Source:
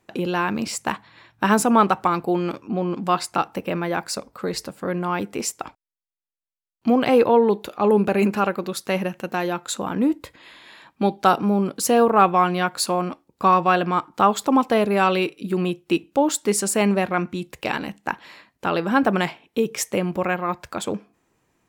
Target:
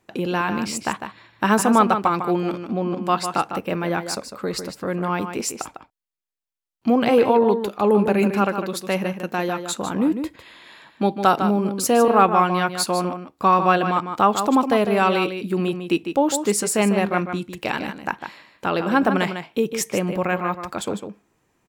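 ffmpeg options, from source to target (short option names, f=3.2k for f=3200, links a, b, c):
-filter_complex "[0:a]asplit=2[a][b];[b]adelay=151.6,volume=-8dB,highshelf=f=4k:g=-3.41[c];[a][c]amix=inputs=2:normalize=0"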